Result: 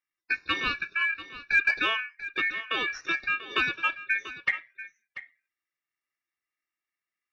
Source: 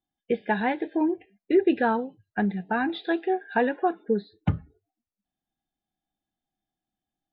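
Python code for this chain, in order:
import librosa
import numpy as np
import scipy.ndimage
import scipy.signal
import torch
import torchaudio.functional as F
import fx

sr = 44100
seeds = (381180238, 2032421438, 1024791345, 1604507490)

y = x * np.sin(2.0 * np.pi * 2000.0 * np.arange(len(x)) / sr)
y = fx.cheby_harmonics(y, sr, harmonics=(3, 6), levels_db=(-32, -45), full_scale_db=-11.0)
y = y + 10.0 ** (-14.5 / 20.0) * np.pad(y, (int(689 * sr / 1000.0), 0))[:len(y)]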